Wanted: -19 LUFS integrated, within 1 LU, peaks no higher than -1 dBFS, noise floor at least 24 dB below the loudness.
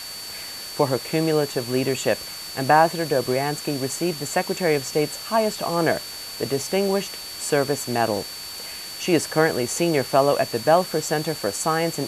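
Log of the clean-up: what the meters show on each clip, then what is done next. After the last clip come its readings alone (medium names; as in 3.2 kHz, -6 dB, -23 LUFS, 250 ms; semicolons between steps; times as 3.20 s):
steady tone 4.5 kHz; tone level -35 dBFS; noise floor -35 dBFS; noise floor target -47 dBFS; loudness -23.0 LUFS; peak level -3.5 dBFS; loudness target -19.0 LUFS
-> band-stop 4.5 kHz, Q 30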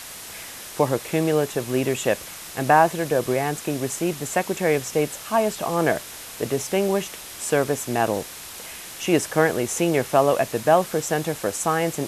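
steady tone not found; noise floor -38 dBFS; noise floor target -47 dBFS
-> noise print and reduce 9 dB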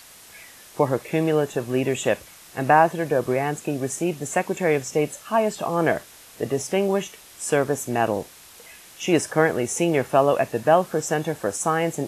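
noise floor -47 dBFS; loudness -23.0 LUFS; peak level -3.5 dBFS; loudness target -19.0 LUFS
-> trim +4 dB; peak limiter -1 dBFS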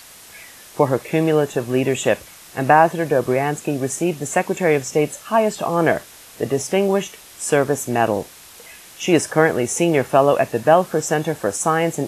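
loudness -19.0 LUFS; peak level -1.0 dBFS; noise floor -43 dBFS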